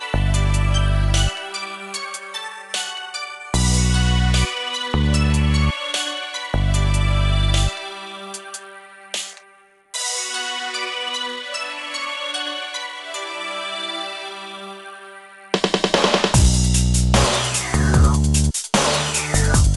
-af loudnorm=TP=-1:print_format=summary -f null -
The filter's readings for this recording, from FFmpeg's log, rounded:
Input Integrated:    -19.7 LUFS
Input True Peak:      -4.0 dBTP
Input LRA:             8.0 LU
Input Threshold:     -30.2 LUFS